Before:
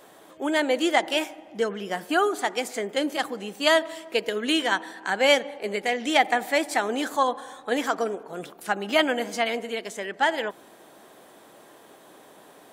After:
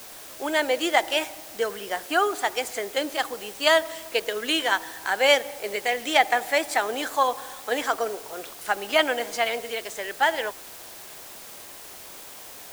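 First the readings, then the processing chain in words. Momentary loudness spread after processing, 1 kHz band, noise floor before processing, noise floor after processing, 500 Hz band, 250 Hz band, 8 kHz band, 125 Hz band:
19 LU, +1.0 dB, −52 dBFS, −43 dBFS, 0.0 dB, −5.5 dB, +3.0 dB, can't be measured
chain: high-pass filter 420 Hz 12 dB per octave
in parallel at −4 dB: bit-depth reduction 6 bits, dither triangular
on the sum: level −3 dB

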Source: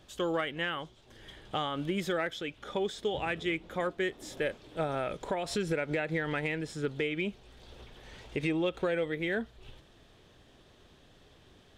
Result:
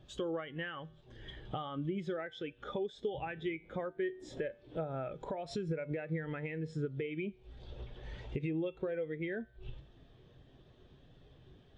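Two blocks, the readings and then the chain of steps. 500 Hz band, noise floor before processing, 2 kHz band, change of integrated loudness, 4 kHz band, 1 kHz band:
−5.5 dB, −60 dBFS, −10.0 dB, −6.5 dB, −11.5 dB, −8.0 dB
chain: Bessel low-pass filter 7,700 Hz
tuned comb filter 53 Hz, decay 0.53 s, harmonics odd, mix 50%
downward compressor 5 to 1, threshold −49 dBFS, peak gain reduction 16 dB
parametric band 130 Hz +6.5 dB 0.23 octaves
every bin expanded away from the loudest bin 1.5 to 1
level +12 dB

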